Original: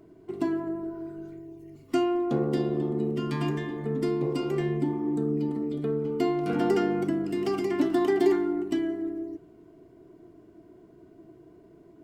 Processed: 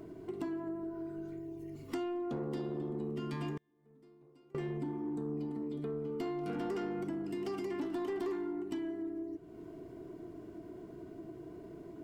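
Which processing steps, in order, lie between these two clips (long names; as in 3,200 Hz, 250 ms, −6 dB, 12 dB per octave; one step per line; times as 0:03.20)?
soft clipping −20.5 dBFS, distortion −16 dB
0:03.57–0:04.55: gate with flip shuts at −28 dBFS, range −38 dB
downward compressor 2.5 to 1, threshold −49 dBFS, peak gain reduction 16.5 dB
level +5.5 dB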